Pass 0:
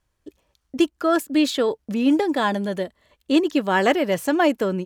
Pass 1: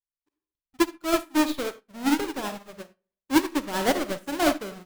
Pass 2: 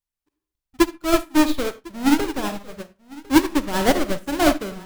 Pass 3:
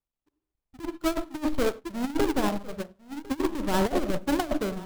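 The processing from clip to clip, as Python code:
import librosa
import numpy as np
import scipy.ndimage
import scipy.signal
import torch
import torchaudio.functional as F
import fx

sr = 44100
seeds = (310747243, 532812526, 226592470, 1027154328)

y1 = fx.halfwave_hold(x, sr)
y1 = fx.rev_freeverb(y1, sr, rt60_s=0.55, hf_ratio=0.65, predelay_ms=10, drr_db=4.0)
y1 = fx.upward_expand(y1, sr, threshold_db=-34.0, expansion=2.5)
y1 = F.gain(torch.from_numpy(y1), -5.5).numpy()
y2 = fx.low_shelf(y1, sr, hz=120.0, db=12.0)
y2 = y2 + 10.0 ** (-22.0 / 20.0) * np.pad(y2, (int(1052 * sr / 1000.0), 0))[:len(y2)]
y2 = F.gain(torch.from_numpy(y2), 4.0).numpy()
y3 = scipy.signal.medfilt(y2, 25)
y3 = fx.over_compress(y3, sr, threshold_db=-22.0, ratio=-0.5)
y3 = F.gain(torch.from_numpy(y3), -2.5).numpy()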